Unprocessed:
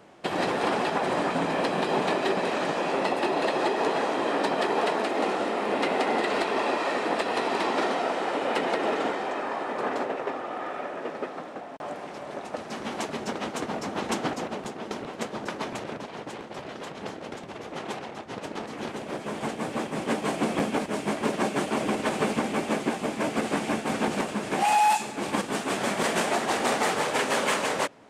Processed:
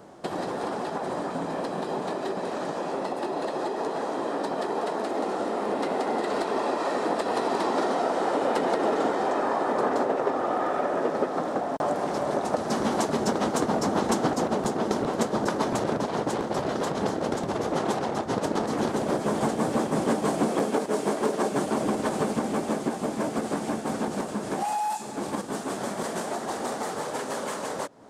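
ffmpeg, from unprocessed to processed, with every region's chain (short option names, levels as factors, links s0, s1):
-filter_complex "[0:a]asettb=1/sr,asplit=3[s0][s1][s2];[s0]atrim=end=20.494[s3];[s1]atrim=start=20.49:end=21.52,asetpts=PTS-STARTPTS,afade=t=in:d=0.004:c=qsin,afade=t=out:st=1.026:d=0.004:c=qsin,highpass=f=290:p=1,equalizer=f=430:t=o:w=0.36:g=5.5[s4];[s2]atrim=start=21.516[s5];[s3][s4]acrossfade=d=0.004:c1=hsin:c2=qsin[s6];[s6][s5]acrossfade=d=0.004:c1=qsin:c2=hsin,acompressor=threshold=0.0178:ratio=3,equalizer=f=2500:t=o:w=1.1:g=-11.5,dynaudnorm=f=660:g=21:m=2.37,volume=1.88"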